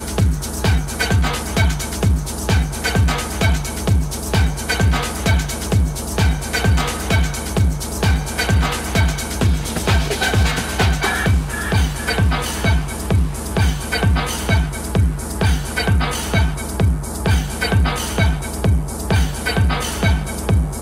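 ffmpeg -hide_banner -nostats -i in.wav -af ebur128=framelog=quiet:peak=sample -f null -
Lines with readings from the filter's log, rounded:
Integrated loudness:
  I:         -18.8 LUFS
  Threshold: -28.8 LUFS
Loudness range:
  LRA:         1.1 LU
  Threshold: -38.7 LUFS
  LRA low:   -19.1 LUFS
  LRA high:  -18.1 LUFS
Sample peak:
  Peak:       -6.0 dBFS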